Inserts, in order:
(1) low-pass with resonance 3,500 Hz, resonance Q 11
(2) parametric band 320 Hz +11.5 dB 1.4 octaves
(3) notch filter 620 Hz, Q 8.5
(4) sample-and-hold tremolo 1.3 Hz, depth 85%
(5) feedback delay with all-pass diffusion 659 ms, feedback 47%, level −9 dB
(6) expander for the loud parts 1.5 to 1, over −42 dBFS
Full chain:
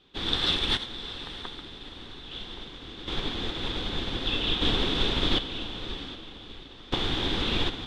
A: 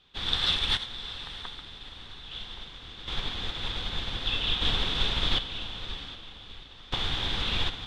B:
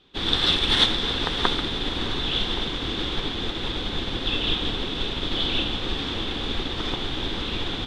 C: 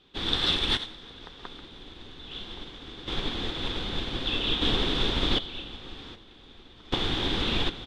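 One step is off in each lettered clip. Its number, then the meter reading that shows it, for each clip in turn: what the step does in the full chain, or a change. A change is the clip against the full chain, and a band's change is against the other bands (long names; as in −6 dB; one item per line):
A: 2, 250 Hz band −8.0 dB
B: 4, change in momentary loudness spread −8 LU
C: 5, change in momentary loudness spread +2 LU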